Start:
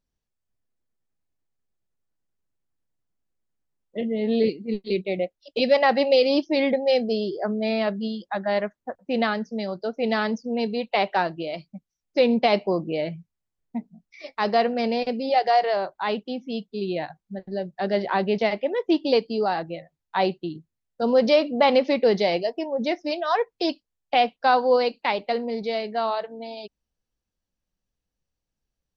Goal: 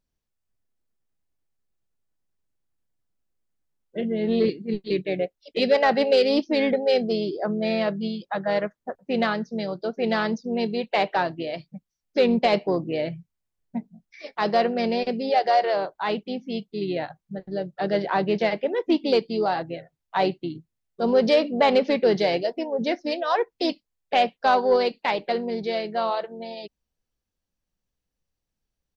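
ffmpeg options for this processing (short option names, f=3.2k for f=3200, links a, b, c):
-filter_complex "[0:a]asplit=2[a][b];[b]asetrate=35002,aresample=44100,atempo=1.25992,volume=-12dB[c];[a][c]amix=inputs=2:normalize=0,asoftclip=type=tanh:threshold=-7.5dB"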